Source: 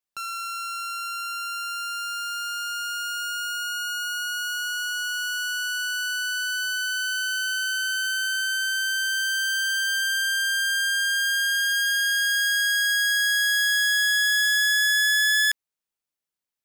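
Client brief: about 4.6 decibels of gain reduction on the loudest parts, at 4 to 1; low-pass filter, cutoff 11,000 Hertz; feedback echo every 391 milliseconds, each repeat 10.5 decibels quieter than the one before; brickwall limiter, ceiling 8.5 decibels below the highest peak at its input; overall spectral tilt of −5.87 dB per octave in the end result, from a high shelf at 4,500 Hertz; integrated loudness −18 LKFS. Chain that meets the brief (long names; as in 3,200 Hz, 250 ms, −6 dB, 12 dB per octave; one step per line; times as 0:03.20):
low-pass filter 11,000 Hz
high-shelf EQ 4,500 Hz −8.5 dB
downward compressor 4 to 1, threshold −27 dBFS
brickwall limiter −31.5 dBFS
repeating echo 391 ms, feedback 30%, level −10.5 dB
level +16 dB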